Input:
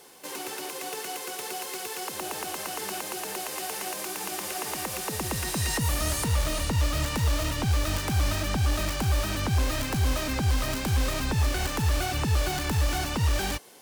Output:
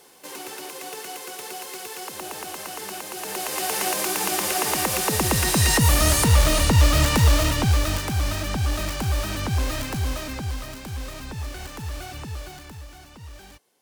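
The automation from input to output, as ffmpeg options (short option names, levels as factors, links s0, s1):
-af "volume=2.82,afade=t=in:st=3.12:d=0.72:silence=0.334965,afade=t=out:st=7.18:d=0.94:silence=0.398107,afade=t=out:st=9.73:d=0.99:silence=0.375837,afade=t=out:st=12.14:d=0.74:silence=0.334965"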